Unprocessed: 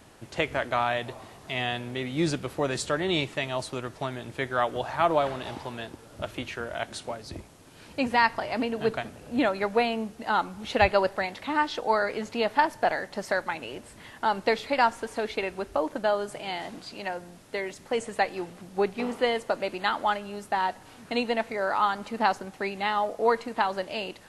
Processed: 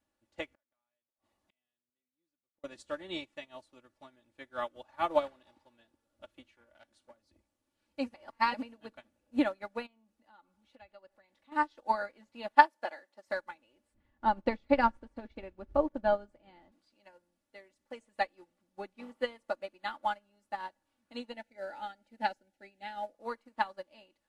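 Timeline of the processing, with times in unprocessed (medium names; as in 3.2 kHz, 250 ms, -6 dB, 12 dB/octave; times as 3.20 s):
0.53–2.64 s: inverted gate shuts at -27 dBFS, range -33 dB
6.55–7.29 s: transformer saturation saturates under 1.8 kHz
8.14–8.54 s: reverse
9.86–11.52 s: compression 2.5:1, threshold -36 dBFS
12.55–13.27 s: high-pass 320 Hz
13.94–16.72 s: RIAA curve playback
21.32–23.14 s: Butterworth band-stop 1.1 kHz, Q 2.4
whole clip: comb 3.5 ms, depth 74%; upward expansion 2.5:1, over -35 dBFS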